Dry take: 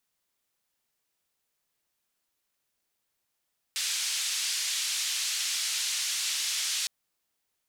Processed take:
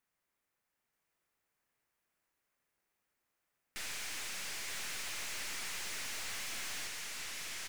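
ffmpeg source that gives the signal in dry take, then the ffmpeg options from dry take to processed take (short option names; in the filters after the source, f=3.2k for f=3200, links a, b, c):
-f lavfi -i "anoisesrc=c=white:d=3.11:r=44100:seed=1,highpass=f=2800,lowpass=f=6800,volume=-18.4dB"
-filter_complex "[0:a]asplit=2[a][b];[b]aecho=0:1:934:0.708[c];[a][c]amix=inputs=2:normalize=0,aeval=exprs='(tanh(50.1*val(0)+0.45)-tanh(0.45))/50.1':c=same,highshelf=f=2.7k:t=q:w=1.5:g=-6.5"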